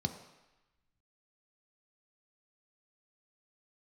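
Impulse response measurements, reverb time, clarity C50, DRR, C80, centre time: 1.0 s, 10.0 dB, 6.0 dB, 11.5 dB, 15 ms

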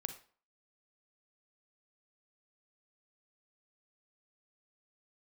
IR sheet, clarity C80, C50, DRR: 15.0 dB, 10.0 dB, 8.0 dB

